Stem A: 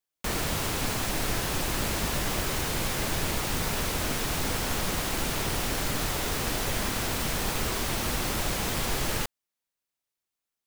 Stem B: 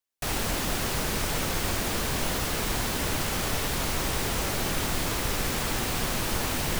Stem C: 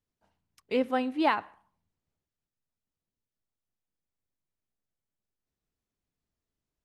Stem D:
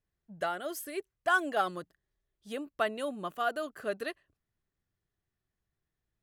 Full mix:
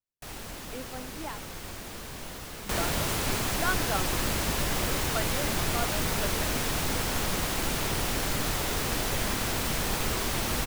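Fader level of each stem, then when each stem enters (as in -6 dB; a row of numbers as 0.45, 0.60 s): 0.0, -12.0, -14.5, -3.5 dB; 2.45, 0.00, 0.00, 2.35 s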